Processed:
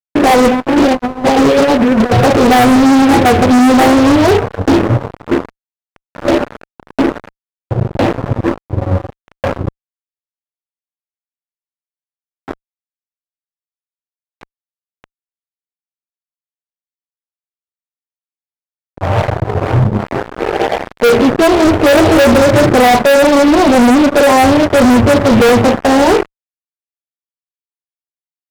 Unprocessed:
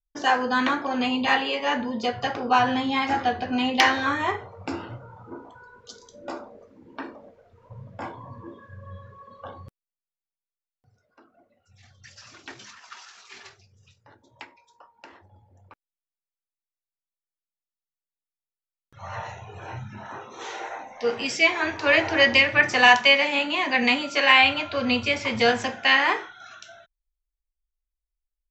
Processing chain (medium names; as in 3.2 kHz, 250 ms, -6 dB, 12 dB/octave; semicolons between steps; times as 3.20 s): inverse Chebyshev low-pass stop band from 2.8 kHz, stop band 70 dB; 0.48–2.24 s: compressor with a negative ratio -34 dBFS, ratio -0.5; fuzz box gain 40 dB, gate -43 dBFS; trim +7.5 dB